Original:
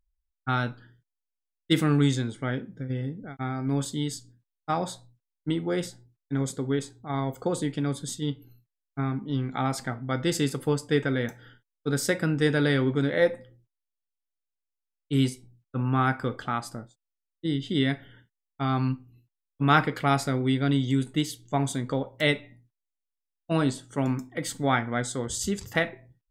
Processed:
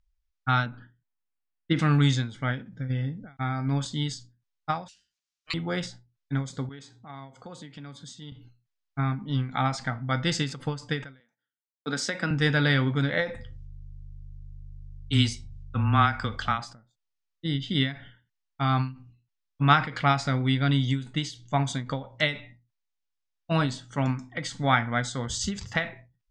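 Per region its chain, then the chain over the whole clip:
0.66–1.79 s: low-pass 2.4 kHz + short-mantissa float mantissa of 8-bit + peaking EQ 270 Hz +7 dB 1.1 oct
4.88–5.54 s: brick-wall FIR high-pass 490 Hz + tilt EQ +4.5 dB/octave + ring modulator 910 Hz
6.69–8.32 s: high-pass 140 Hz + compression 2:1, threshold -48 dBFS
11.20–12.31 s: gate -45 dBFS, range -35 dB + high-pass 190 Hz 24 dB/octave
13.33–16.57 s: treble shelf 2.6 kHz +9 dB + mains buzz 50 Hz, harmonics 3, -46 dBFS -5 dB/octave + frequency shift -15 Hz
whole clip: low-pass 6.4 kHz 24 dB/octave; peaking EQ 380 Hz -12 dB 1.1 oct; endings held to a fixed fall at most 150 dB/s; trim +4.5 dB

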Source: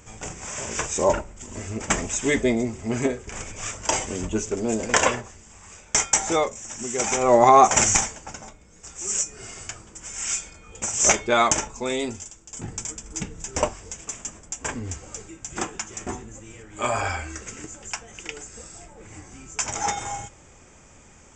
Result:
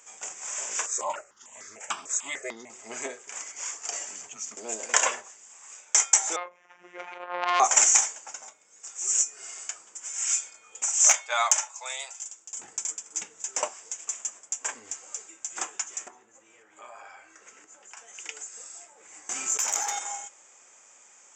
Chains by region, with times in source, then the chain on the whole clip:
0.86–2.70 s: peaking EQ 1.2 kHz +4 dB 0.2 oct + stepped phaser 6.7 Hz 790–2800 Hz
3.39–4.57 s: high-pass 100 Hz + compression 3:1, threshold -29 dBFS + frequency shift -190 Hz
6.36–7.60 s: low-pass 2.5 kHz 24 dB/octave + robot voice 177 Hz + transformer saturation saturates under 1.7 kHz
10.83–12.25 s: steep high-pass 610 Hz + overload inside the chain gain 7 dB
16.08–17.97 s: low-pass 1.7 kHz 6 dB/octave + compression 3:1, threshold -40 dBFS
19.29–19.99 s: valve stage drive 18 dB, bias 0.65 + short-mantissa float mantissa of 6-bit + level flattener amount 100%
whole clip: high-pass 690 Hz 12 dB/octave; peaking EQ 6.9 kHz +7 dB 0.46 oct; trim -4.5 dB

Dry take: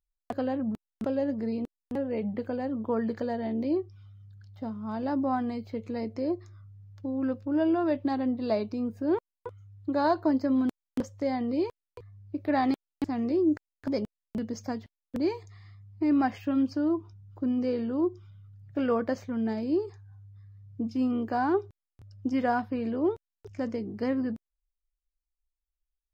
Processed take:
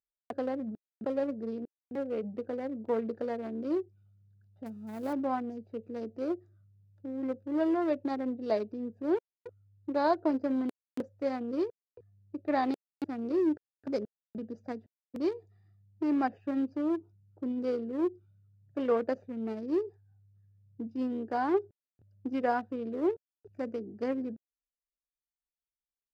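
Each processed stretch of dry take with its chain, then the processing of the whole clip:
4.66–5.13 s: zero-crossing glitches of -35.5 dBFS + bass shelf 150 Hz +3.5 dB + tape noise reduction on one side only encoder only
whole clip: local Wiener filter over 41 samples; high-pass 330 Hz 6 dB/octave; dynamic bell 450 Hz, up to +5 dB, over -41 dBFS, Q 1.5; trim -2 dB

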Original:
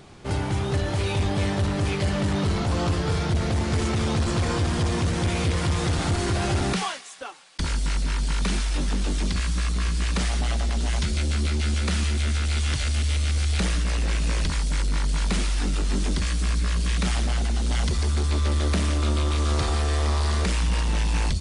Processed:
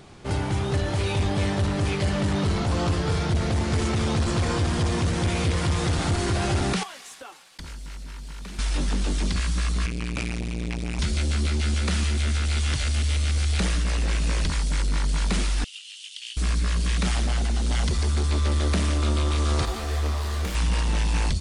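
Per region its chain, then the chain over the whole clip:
6.83–8.59 s: CVSD coder 64 kbps + compression 4:1, threshold -37 dBFS
9.86–10.99 s: peaking EQ 2.4 kHz +15 dB 0.27 oct + transformer saturation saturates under 450 Hz
15.64–16.37 s: ladder high-pass 2.8 kHz, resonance 80% + treble shelf 6.4 kHz +5.5 dB + loudspeaker Doppler distortion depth 0.32 ms
19.65–20.55 s: self-modulated delay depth 0.078 ms + detune thickener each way 28 cents
whole clip: none

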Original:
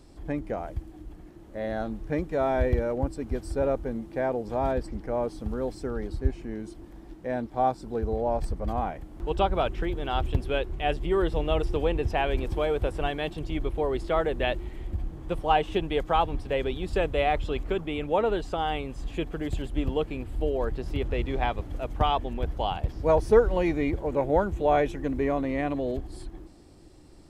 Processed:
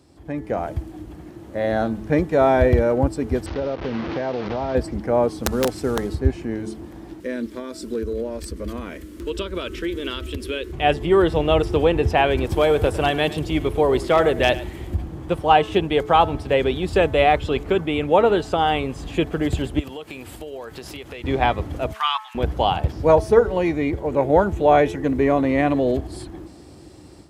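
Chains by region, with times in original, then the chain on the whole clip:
3.46–4.75 s: one-bit delta coder 32 kbps, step -30.5 dBFS + distance through air 210 m + compression 12:1, threshold -30 dBFS
5.43–6.15 s: CVSD coder 64 kbps + integer overflow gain 20.5 dB
7.20–10.73 s: treble shelf 3.8 kHz +7 dB + compression 4:1, threshold -28 dBFS + static phaser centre 320 Hz, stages 4
12.49–14.95 s: treble shelf 6.4 kHz +7.5 dB + hard clipper -17 dBFS + delay 103 ms -16.5 dB
19.79–21.24 s: tilt EQ +3 dB/octave + compression 8:1, threshold -40 dBFS
21.92–22.35 s: steep high-pass 1 kHz 48 dB/octave + tape noise reduction on one side only encoder only
whole clip: high-pass 63 Hz 24 dB/octave; de-hum 216.1 Hz, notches 10; level rider gain up to 10 dB

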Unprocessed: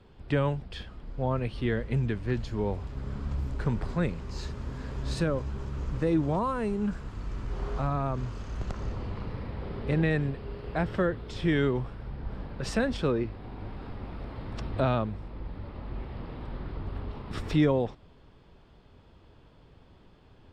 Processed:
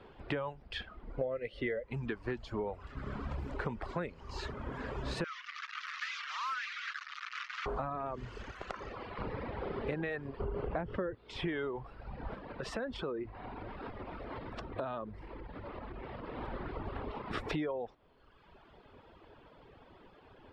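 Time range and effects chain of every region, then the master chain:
1.21–1.84 s: peaking EQ 940 Hz -13.5 dB 0.39 oct + small resonant body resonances 540/2000 Hz, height 15 dB, ringing for 25 ms
5.24–7.66 s: one-bit delta coder 32 kbps, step -30 dBFS + Chebyshev high-pass 1.2 kHz, order 5 + hard clipper -32.5 dBFS
8.51–9.19 s: bass shelf 480 Hz -10.5 dB + band-stop 910 Hz, Q 14
10.40–11.15 s: low-pass 3.2 kHz 6 dB/octave + tilt EQ -2 dB/octave + level flattener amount 50%
12.35–16.37 s: dynamic bell 2.3 kHz, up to -5 dB, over -53 dBFS, Q 2.5 + band-stop 810 Hz, Q 23 + compression 3:1, threshold -37 dBFS
whole clip: reverb removal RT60 1.1 s; tone controls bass -12 dB, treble -14 dB; compression 10:1, threshold -40 dBFS; trim +7 dB

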